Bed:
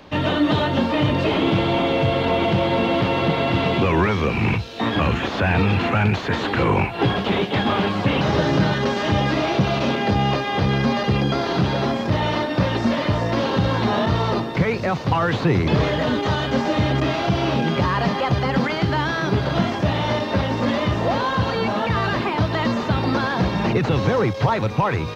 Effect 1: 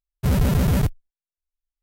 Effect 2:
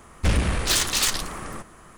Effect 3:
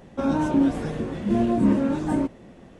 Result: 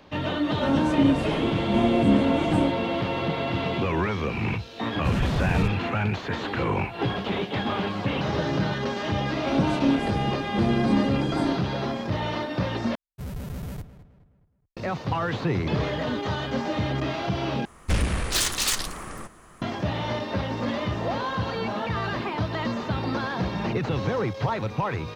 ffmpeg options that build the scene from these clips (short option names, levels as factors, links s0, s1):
-filter_complex "[3:a]asplit=2[s0][s1];[1:a]asplit=2[s2][s3];[0:a]volume=0.447[s4];[s2]lowpass=6700[s5];[s3]asplit=2[s6][s7];[s7]adelay=210,lowpass=f=2900:p=1,volume=0.224,asplit=2[s8][s9];[s9]adelay=210,lowpass=f=2900:p=1,volume=0.42,asplit=2[s10][s11];[s11]adelay=210,lowpass=f=2900:p=1,volume=0.42,asplit=2[s12][s13];[s13]adelay=210,lowpass=f=2900:p=1,volume=0.42[s14];[s6][s8][s10][s12][s14]amix=inputs=5:normalize=0[s15];[s4]asplit=3[s16][s17][s18];[s16]atrim=end=12.954[s19];[s15]atrim=end=1.82,asetpts=PTS-STARTPTS,volume=0.168[s20];[s17]atrim=start=14.766:end=17.654[s21];[2:a]atrim=end=1.97,asetpts=PTS-STARTPTS,volume=0.75[s22];[s18]atrim=start=19.616[s23];[s0]atrim=end=2.79,asetpts=PTS-STARTPTS,volume=0.944,afade=t=in:d=0.004:c=hsin,afade=t=out:st=2.786:d=0.004:c=hsin,adelay=440[s24];[s5]atrim=end=1.82,asetpts=PTS-STARTPTS,volume=0.501,afade=t=in:d=0.004:c=hsin,afade=t=out:st=1.816:d=0.004:c=hsin,adelay=212121S[s25];[s1]atrim=end=2.79,asetpts=PTS-STARTPTS,volume=0.708,afade=t=in:d=0.004:c=hsin,afade=t=out:st=2.786:d=0.004:c=hsin,adelay=9280[s26];[s19][s20]acrossfade=d=0.004:c1=hsin:c2=hsin[s27];[s27][s21]acrossfade=d=0.004:c1=hsin:c2=hsin[s28];[s28][s22]acrossfade=d=0.004:c1=hsin:c2=hsin[s29];[s29][s23]acrossfade=d=0.004:c1=hsin:c2=hsin[s30];[s30][s24][s25][s26]amix=inputs=4:normalize=0"